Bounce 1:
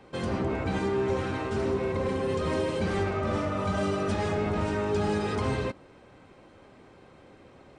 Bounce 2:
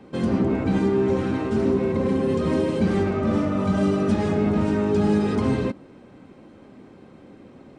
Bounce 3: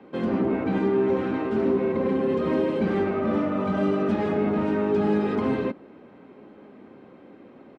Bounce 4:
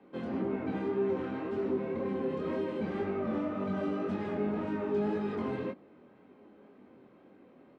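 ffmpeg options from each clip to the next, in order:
-af "equalizer=f=230:w=0.92:g=12"
-filter_complex "[0:a]acrossover=split=200 3500:gain=0.224 1 0.126[a][b][c];[a][b][c]amix=inputs=3:normalize=0,asplit=2[d][e];[e]adelay=1458,volume=-30dB,highshelf=f=4k:g=-32.8[f];[d][f]amix=inputs=2:normalize=0"
-af "flanger=delay=20:depth=4.4:speed=1.9,volume=-6.5dB"

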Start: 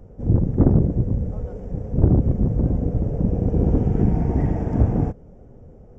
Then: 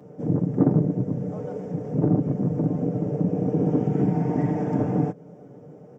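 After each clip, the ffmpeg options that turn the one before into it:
-filter_complex "[0:a]highpass=f=150:w=0.5412,highpass=f=150:w=1.3066,aecho=1:1:6.7:0.53,asplit=2[a][b];[b]acompressor=threshold=-29dB:ratio=6,volume=2dB[c];[a][c]amix=inputs=2:normalize=0,volume=-3.5dB"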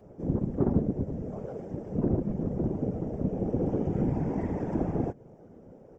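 -af "afftfilt=real='hypot(re,im)*cos(2*PI*random(0))':imag='hypot(re,im)*sin(2*PI*random(1))':win_size=512:overlap=0.75"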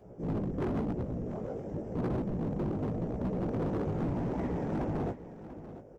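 -af "flanger=delay=16:depth=3.8:speed=0.92,volume=31.5dB,asoftclip=hard,volume=-31.5dB,aecho=1:1:690:0.2,volume=2.5dB"

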